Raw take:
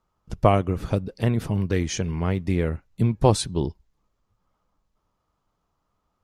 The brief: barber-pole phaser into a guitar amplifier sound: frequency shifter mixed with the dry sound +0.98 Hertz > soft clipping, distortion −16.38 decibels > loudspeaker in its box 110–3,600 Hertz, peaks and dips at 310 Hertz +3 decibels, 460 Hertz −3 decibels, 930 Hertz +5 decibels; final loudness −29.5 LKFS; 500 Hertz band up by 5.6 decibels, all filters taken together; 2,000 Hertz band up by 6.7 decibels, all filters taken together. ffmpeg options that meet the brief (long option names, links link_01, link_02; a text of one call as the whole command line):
ffmpeg -i in.wav -filter_complex "[0:a]equalizer=frequency=500:width_type=o:gain=7.5,equalizer=frequency=2000:width_type=o:gain=7.5,asplit=2[link_01][link_02];[link_02]afreqshift=0.98[link_03];[link_01][link_03]amix=inputs=2:normalize=1,asoftclip=threshold=-6.5dB,highpass=110,equalizer=frequency=310:width_type=q:width=4:gain=3,equalizer=frequency=460:width_type=q:width=4:gain=-3,equalizer=frequency=930:width_type=q:width=4:gain=5,lowpass=frequency=3600:width=0.5412,lowpass=frequency=3600:width=1.3066,volume=-4dB" out.wav